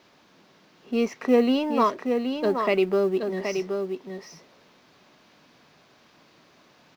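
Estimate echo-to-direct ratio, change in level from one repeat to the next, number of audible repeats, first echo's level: -6.0 dB, no steady repeat, 1, -6.0 dB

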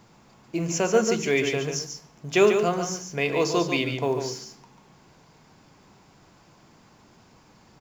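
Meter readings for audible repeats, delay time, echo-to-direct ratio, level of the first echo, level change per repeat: 1, 0.142 s, -7.0 dB, -7.0 dB, no steady repeat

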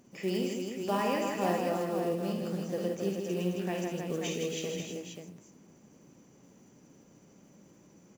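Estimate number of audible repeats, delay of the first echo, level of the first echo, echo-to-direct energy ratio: 4, 56 ms, -6.5 dB, 0.5 dB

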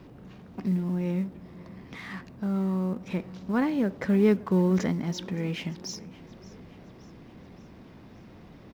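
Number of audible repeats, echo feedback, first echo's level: 3, 54%, -21.0 dB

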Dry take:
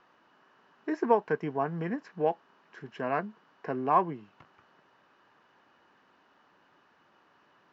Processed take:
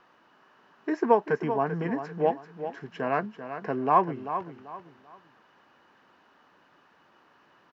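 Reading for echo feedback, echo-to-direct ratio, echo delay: 30%, -9.5 dB, 0.39 s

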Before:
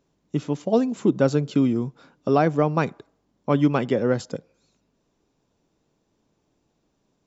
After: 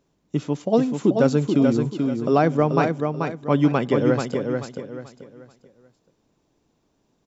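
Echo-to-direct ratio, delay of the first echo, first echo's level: -4.5 dB, 0.435 s, -5.0 dB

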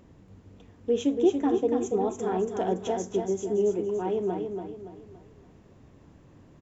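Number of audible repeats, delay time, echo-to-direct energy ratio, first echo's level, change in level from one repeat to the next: 4, 0.284 s, -5.0 dB, -5.5 dB, -8.0 dB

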